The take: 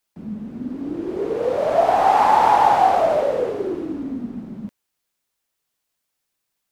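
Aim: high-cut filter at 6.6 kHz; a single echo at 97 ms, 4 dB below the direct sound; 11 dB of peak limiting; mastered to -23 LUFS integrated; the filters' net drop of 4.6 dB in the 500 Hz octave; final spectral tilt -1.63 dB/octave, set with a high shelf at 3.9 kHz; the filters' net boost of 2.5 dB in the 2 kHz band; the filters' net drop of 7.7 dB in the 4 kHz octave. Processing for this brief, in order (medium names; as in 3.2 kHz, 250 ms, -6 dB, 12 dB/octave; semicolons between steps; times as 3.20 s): low-pass 6.6 kHz; peaking EQ 500 Hz -6.5 dB; peaking EQ 2 kHz +7.5 dB; treble shelf 3.9 kHz -8.5 dB; peaking EQ 4 kHz -9 dB; peak limiter -16.5 dBFS; delay 97 ms -4 dB; trim +2.5 dB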